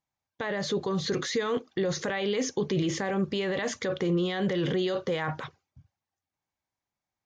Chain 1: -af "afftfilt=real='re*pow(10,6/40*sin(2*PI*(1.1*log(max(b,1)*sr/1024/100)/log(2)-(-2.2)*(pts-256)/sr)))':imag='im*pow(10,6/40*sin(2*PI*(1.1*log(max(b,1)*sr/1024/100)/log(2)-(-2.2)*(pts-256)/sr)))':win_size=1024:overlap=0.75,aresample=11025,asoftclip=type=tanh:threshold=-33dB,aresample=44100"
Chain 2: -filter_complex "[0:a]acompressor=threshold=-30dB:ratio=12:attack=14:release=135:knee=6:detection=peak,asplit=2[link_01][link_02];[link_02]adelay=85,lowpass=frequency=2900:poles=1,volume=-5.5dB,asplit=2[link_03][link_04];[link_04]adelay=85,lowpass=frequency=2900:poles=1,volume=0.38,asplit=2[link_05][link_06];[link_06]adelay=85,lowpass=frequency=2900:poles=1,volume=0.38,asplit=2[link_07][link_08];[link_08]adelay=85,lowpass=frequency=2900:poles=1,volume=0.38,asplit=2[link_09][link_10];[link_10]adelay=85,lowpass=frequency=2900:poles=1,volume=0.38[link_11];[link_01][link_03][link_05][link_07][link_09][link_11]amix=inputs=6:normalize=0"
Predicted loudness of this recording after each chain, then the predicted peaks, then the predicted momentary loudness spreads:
−36.5, −33.0 LKFS; −28.0, −18.0 dBFS; 3, 3 LU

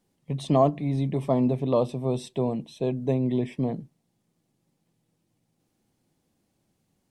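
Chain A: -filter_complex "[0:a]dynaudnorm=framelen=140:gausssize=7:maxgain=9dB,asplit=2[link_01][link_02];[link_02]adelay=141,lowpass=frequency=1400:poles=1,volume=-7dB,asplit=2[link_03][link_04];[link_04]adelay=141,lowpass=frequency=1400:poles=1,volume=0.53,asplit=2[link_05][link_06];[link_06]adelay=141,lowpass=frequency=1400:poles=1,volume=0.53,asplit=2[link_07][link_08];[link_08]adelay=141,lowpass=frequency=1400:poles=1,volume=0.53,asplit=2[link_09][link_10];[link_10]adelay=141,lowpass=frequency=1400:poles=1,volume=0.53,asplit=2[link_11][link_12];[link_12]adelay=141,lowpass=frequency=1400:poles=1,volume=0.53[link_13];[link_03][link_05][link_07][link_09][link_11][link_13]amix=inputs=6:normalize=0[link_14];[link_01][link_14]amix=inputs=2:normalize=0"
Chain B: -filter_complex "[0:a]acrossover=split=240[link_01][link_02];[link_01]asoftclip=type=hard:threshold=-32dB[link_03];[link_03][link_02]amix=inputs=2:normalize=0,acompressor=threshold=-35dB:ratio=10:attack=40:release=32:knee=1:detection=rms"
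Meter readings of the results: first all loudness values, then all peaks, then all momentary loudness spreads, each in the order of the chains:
−18.0, −36.0 LKFS; −2.5, −19.0 dBFS; 11, 4 LU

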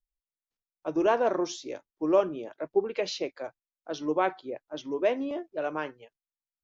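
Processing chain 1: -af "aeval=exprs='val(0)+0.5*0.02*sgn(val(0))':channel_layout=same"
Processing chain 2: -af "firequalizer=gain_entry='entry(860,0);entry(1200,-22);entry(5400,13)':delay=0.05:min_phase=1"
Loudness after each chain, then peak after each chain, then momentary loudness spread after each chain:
−28.5, −29.5 LKFS; −11.0, −11.5 dBFS; 17, 14 LU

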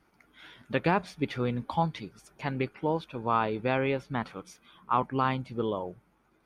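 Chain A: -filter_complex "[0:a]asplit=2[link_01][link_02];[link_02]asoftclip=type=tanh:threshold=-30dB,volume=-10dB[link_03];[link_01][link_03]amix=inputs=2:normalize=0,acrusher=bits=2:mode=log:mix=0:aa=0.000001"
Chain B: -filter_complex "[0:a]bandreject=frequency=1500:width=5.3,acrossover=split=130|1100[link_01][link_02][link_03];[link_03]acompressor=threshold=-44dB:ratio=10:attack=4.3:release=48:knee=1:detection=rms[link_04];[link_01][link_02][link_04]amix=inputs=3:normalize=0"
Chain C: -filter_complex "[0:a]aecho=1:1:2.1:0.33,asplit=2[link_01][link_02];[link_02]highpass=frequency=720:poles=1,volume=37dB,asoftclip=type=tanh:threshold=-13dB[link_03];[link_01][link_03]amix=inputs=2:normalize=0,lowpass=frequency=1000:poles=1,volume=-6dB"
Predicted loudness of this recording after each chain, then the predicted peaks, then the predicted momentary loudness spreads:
−29.0, −32.0, −24.0 LKFS; −10.5, −14.5, −14.5 dBFS; 14, 11, 9 LU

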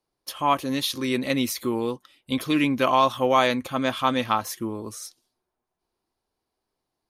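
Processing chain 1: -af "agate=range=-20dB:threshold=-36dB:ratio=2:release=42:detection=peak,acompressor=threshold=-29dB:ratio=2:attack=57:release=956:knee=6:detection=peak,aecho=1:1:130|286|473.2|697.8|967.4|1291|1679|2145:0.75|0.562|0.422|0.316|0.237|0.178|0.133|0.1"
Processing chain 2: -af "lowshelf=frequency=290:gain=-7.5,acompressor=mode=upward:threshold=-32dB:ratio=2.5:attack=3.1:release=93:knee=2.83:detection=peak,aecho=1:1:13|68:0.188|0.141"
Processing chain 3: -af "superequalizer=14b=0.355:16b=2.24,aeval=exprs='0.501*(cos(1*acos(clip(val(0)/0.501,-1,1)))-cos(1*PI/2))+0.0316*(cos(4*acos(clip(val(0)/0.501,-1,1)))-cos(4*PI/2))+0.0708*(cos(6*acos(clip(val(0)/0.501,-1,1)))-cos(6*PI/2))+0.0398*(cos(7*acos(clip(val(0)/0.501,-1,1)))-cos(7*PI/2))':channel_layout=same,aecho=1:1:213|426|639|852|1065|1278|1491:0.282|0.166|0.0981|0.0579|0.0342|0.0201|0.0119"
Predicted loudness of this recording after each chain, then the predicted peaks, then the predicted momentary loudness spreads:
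−26.0, −25.5, −25.0 LKFS; −9.5, −6.5, −5.0 dBFS; 16, 14, 15 LU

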